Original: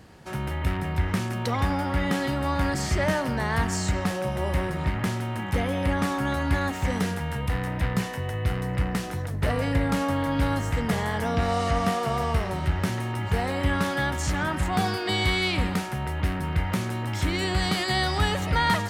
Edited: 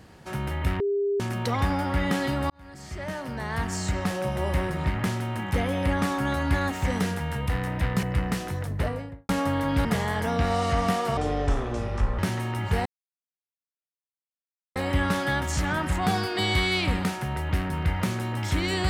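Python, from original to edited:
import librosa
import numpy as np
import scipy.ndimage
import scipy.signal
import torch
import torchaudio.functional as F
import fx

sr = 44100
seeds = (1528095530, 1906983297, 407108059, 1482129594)

y = fx.studio_fade_out(x, sr, start_s=9.27, length_s=0.65)
y = fx.edit(y, sr, fx.bleep(start_s=0.8, length_s=0.4, hz=402.0, db=-22.0),
    fx.fade_in_span(start_s=2.5, length_s=1.75),
    fx.cut(start_s=8.03, length_s=0.63),
    fx.cut(start_s=10.48, length_s=0.35),
    fx.speed_span(start_s=12.15, length_s=0.64, speed=0.63),
    fx.insert_silence(at_s=13.46, length_s=1.9), tone=tone)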